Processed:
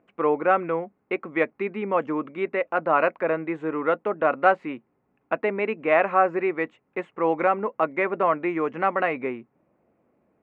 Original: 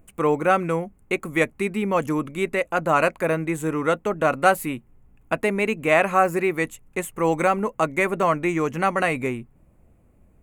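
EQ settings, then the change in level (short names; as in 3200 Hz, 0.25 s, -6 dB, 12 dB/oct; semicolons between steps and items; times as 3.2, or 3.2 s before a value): BPF 300–2300 Hz; air absorption 150 m; 0.0 dB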